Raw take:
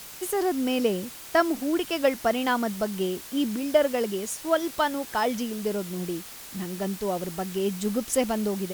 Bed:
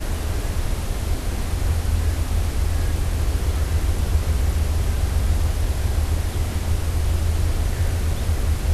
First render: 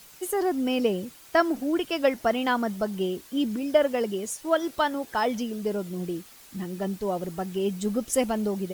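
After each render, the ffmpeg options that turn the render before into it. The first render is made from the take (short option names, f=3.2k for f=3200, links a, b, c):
-af "afftdn=nr=9:nf=-42"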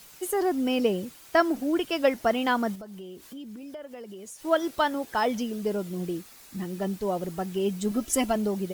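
-filter_complex "[0:a]asettb=1/sr,asplit=3[a][b][c];[a]atrim=end=2.754[d];[b]atrim=start=2.75:end=4.44,asetpts=PTS-STARTPTS,afade=t=in:d=0.004:c=qsin,afade=t=out:st=1.686:d=0.004:c=qsin,acompressor=threshold=-41dB:ratio=4:attack=3.2:release=140:knee=1:detection=peak[e];[c]atrim=start=4.436[f];[d][e]acrossfade=d=0.004:c1=hsin:c2=qsin[g];[g][f]acrossfade=d=0.004:c1=qsin:c2=hsin,asettb=1/sr,asplit=3[h][i][j];[h]atrim=end=6.184[k];[i]atrim=start=6.18:end=6.63,asetpts=PTS-STARTPTS,afade=t=in:d=0.004:c=qsin,afade=t=out:st=0.446:d=0.004:c=qsin,bandreject=f=3.1k:w=12[l];[j]atrim=start=6.626[m];[k][l]acrossfade=d=0.004:c1=hsin:c2=qsin[n];[n][m]acrossfade=d=0.004:c1=qsin:c2=hsin,asettb=1/sr,asplit=3[o][p][q];[o]atrim=end=7.914[r];[p]atrim=start=7.91:end=8.36,asetpts=PTS-STARTPTS,afade=t=in:d=0.004:c=qsin,afade=t=out:st=0.446:d=0.004:c=qsin,aecho=1:1:3:0.65,atrim=end_sample=19845[s];[q]atrim=start=8.356[t];[r][s]acrossfade=d=0.004:c1=hsin:c2=qsin[u];[u][t]acrossfade=d=0.004:c1=qsin:c2=hsin"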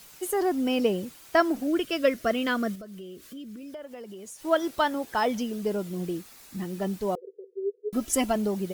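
-filter_complex "[0:a]asettb=1/sr,asplit=3[a][b][c];[a]atrim=end=1.674[d];[b]atrim=start=1.67:end=3.74,asetpts=PTS-STARTPTS,afade=t=in:d=0.004:c=qsin,afade=t=out:st=2.066:d=0.004:c=qsin,asuperstop=centerf=860:order=4:qfactor=2.2[e];[c]atrim=start=3.736[f];[d][e]acrossfade=d=0.004:c1=hsin:c2=qsin[g];[g][f]acrossfade=d=0.004:c1=qsin:c2=hsin,asettb=1/sr,asplit=3[h][i][j];[h]atrim=end=7.154[k];[i]atrim=start=7.15:end=7.93,asetpts=PTS-STARTPTS,afade=t=in:d=0.004:c=qsin,afade=t=out:st=0.776:d=0.004:c=qsin,asuperpass=centerf=440:order=8:qfactor=4.1[l];[j]atrim=start=7.926[m];[k][l]acrossfade=d=0.004:c1=hsin:c2=qsin[n];[n][m]acrossfade=d=0.004:c1=qsin:c2=hsin"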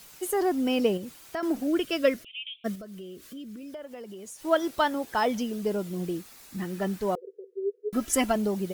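-filter_complex "[0:a]asettb=1/sr,asplit=3[a][b][c];[a]atrim=end=0.974[d];[b]atrim=start=0.97:end=1.43,asetpts=PTS-STARTPTS,afade=t=in:d=0.004:c=qsin,afade=t=out:st=0.456:d=0.004:c=qsin,acompressor=threshold=-34dB:ratio=2.5:attack=3.2:release=140:knee=1:detection=peak[e];[c]atrim=start=1.426[f];[d][e]acrossfade=d=0.004:c1=hsin:c2=qsin[g];[g][f]acrossfade=d=0.004:c1=qsin:c2=hsin,asplit=3[h][i][j];[h]afade=t=out:st=2.23:d=0.02[k];[i]asuperpass=centerf=2900:order=12:qfactor=2.5,afade=t=in:st=2.23:d=0.02,afade=t=out:st=2.64:d=0.02[l];[j]afade=t=in:st=2.64:d=0.02[m];[k][l][m]amix=inputs=3:normalize=0,asettb=1/sr,asplit=3[n][o][p];[n]atrim=end=6.584[q];[o]atrim=start=6.58:end=8.32,asetpts=PTS-STARTPTS,afade=t=in:d=0.004:c=qsin,afade=t=out:st=1.736:d=0.004:c=qsin,equalizer=f=1.6k:w=1.5:g=6[r];[p]atrim=start=8.316[s];[q][r]acrossfade=d=0.004:c1=hsin:c2=qsin[t];[t][s]acrossfade=d=0.004:c1=qsin:c2=hsin"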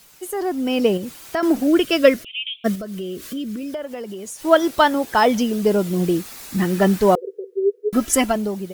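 -af "dynaudnorm=f=350:g=5:m=15dB"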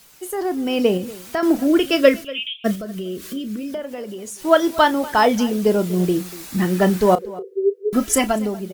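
-filter_complex "[0:a]asplit=2[a][b];[b]adelay=33,volume=-13dB[c];[a][c]amix=inputs=2:normalize=0,asplit=2[d][e];[e]adelay=239.1,volume=-19dB,highshelf=f=4k:g=-5.38[f];[d][f]amix=inputs=2:normalize=0"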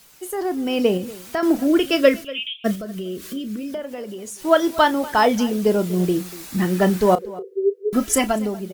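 -af "volume=-1dB,alimiter=limit=-3dB:level=0:latency=1"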